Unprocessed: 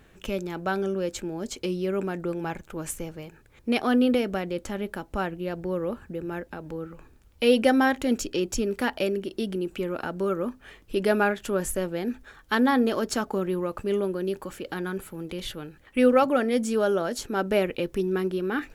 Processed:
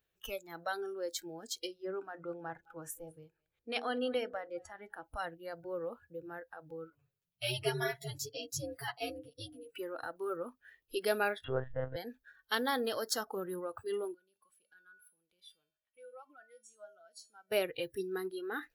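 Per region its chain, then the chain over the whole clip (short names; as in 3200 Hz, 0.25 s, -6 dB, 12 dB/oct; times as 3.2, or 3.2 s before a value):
1.67–5.04 high shelf 4300 Hz -10 dB + notches 60/120/180/240/300/360/420/480/540 Hz + echo 0.208 s -19.5 dB
6.9–9.75 ring modulator 120 Hz + comb 7.1 ms, depth 87% + ensemble effect
11.44–11.96 low shelf 300 Hz +7 dB + monotone LPC vocoder at 8 kHz 130 Hz
14.14–17.52 low shelf 360 Hz -4.5 dB + compressor 2:1, threshold -31 dBFS + resonator 210 Hz, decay 0.64 s, harmonics odd, mix 80%
whole clip: graphic EQ 250/1000/2000/8000 Hz -11/-7/-7/-11 dB; spectral noise reduction 20 dB; tilt +2.5 dB/oct; gain -1.5 dB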